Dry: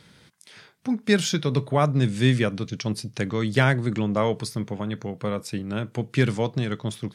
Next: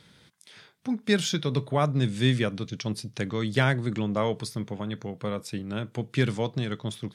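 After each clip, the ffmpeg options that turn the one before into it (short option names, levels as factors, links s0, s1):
-af "equalizer=f=3500:t=o:w=0.25:g=4,volume=0.668"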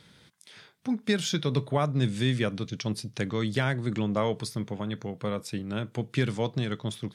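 -af "alimiter=limit=0.211:level=0:latency=1:release=249"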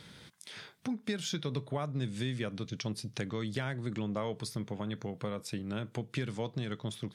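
-af "acompressor=threshold=0.00891:ratio=2.5,volume=1.5"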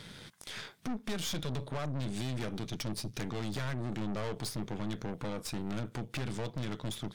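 -af "aeval=exprs='(tanh(126*val(0)+0.8)-tanh(0.8))/126':c=same,volume=2.66"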